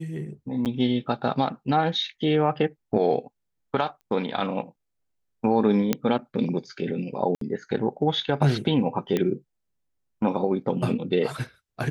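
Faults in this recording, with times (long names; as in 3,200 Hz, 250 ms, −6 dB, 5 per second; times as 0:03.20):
0:00.65–0:00.66: drop-out 8.4 ms
0:04.01: click −37 dBFS
0:05.93: click −8 dBFS
0:07.35–0:07.41: drop-out 63 ms
0:09.17: click −12 dBFS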